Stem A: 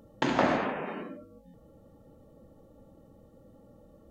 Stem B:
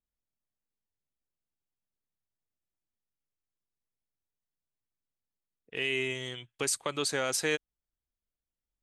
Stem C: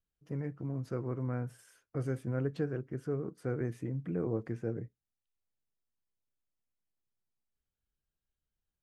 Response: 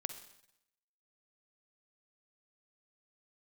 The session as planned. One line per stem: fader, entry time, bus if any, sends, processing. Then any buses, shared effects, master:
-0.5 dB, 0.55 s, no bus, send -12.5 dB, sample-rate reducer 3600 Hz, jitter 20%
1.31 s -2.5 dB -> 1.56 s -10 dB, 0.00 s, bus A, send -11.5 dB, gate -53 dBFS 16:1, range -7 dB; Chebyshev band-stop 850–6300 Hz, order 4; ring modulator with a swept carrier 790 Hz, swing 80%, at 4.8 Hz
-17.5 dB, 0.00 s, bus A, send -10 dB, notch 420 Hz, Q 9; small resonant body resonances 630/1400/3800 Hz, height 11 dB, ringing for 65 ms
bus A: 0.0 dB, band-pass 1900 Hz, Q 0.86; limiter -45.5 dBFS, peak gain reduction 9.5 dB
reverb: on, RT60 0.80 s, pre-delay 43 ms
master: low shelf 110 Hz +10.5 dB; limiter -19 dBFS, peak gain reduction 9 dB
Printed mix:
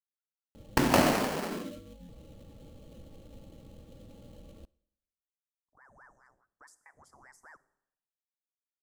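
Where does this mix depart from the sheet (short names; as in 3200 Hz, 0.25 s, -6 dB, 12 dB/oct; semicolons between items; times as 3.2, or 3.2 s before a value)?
stem B -2.5 dB -> -10.5 dB; stem C: muted; master: missing limiter -19 dBFS, peak gain reduction 9 dB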